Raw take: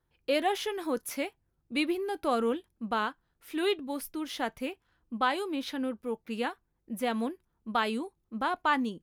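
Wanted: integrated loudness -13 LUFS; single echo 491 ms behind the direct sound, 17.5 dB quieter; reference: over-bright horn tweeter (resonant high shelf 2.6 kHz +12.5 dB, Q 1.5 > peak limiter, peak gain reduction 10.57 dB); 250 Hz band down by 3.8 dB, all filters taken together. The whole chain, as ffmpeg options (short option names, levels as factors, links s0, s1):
-af "equalizer=f=250:t=o:g=-4.5,highshelf=f=2600:t=q:w=1.5:g=12.5,aecho=1:1:491:0.133,volume=10,alimiter=limit=0.891:level=0:latency=1"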